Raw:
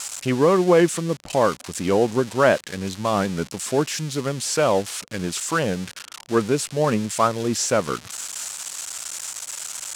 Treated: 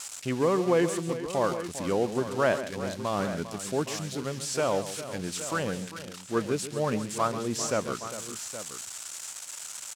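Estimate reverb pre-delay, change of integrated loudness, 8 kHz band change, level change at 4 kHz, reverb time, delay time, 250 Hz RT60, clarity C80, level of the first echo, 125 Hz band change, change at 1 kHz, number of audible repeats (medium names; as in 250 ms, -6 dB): no reverb, -7.5 dB, -7.5 dB, -7.5 dB, no reverb, 137 ms, no reverb, no reverb, -12.5 dB, -7.5 dB, -7.5 dB, 3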